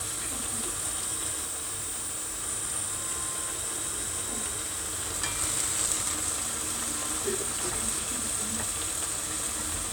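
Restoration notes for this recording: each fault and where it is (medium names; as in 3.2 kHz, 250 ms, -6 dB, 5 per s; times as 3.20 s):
1.44–2.44 s: clipped -30.5 dBFS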